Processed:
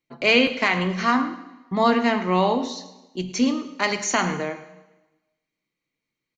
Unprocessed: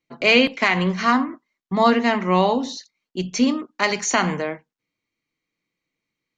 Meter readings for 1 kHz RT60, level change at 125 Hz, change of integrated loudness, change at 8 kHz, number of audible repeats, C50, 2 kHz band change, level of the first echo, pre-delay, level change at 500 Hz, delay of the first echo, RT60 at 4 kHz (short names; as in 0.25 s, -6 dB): 1.1 s, -3.0 dB, -2.0 dB, -2.0 dB, 1, 11.0 dB, -2.0 dB, -16.5 dB, 4 ms, -2.0 dB, 0.108 s, 1.0 s